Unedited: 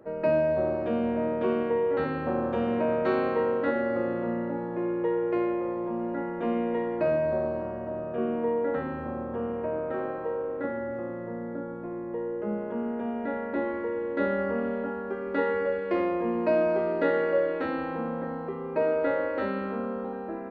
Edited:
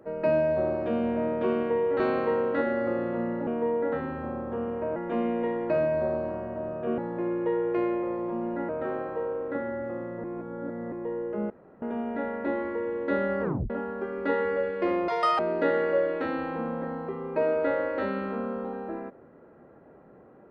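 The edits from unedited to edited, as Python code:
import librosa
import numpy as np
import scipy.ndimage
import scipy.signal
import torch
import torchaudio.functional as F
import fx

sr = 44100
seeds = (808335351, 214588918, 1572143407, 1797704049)

y = fx.edit(x, sr, fx.cut(start_s=2.0, length_s=1.09),
    fx.swap(start_s=4.56, length_s=1.71, other_s=8.29, other_length_s=1.49),
    fx.reverse_span(start_s=11.33, length_s=0.68),
    fx.room_tone_fill(start_s=12.59, length_s=0.32),
    fx.tape_stop(start_s=14.52, length_s=0.27),
    fx.speed_span(start_s=16.17, length_s=0.62, speed=1.99), tone=tone)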